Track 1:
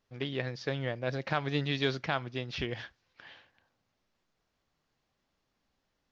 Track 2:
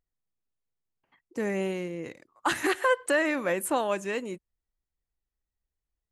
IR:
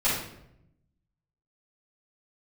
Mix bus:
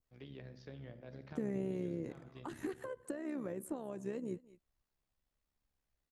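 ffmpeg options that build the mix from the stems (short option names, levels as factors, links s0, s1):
-filter_complex "[0:a]volume=0.237,asplit=2[s0][s1];[s1]volume=0.0944[s2];[1:a]acompressor=threshold=0.0282:ratio=6,volume=1.26,asplit=3[s3][s4][s5];[s4]volume=0.0708[s6];[s5]apad=whole_len=269553[s7];[s0][s7]sidechaincompress=threshold=0.00708:ratio=8:attack=16:release=352[s8];[2:a]atrim=start_sample=2205[s9];[s2][s9]afir=irnorm=-1:irlink=0[s10];[s6]aecho=0:1:208:1[s11];[s8][s3][s10][s11]amix=inputs=4:normalize=0,adynamicequalizer=threshold=0.00141:dfrequency=2700:dqfactor=1.1:tfrequency=2700:tqfactor=1.1:attack=5:release=100:ratio=0.375:range=3.5:mode=cutabove:tftype=bell,acrossover=split=410[s12][s13];[s13]acompressor=threshold=0.001:ratio=2[s14];[s12][s14]amix=inputs=2:normalize=0,tremolo=f=68:d=0.571"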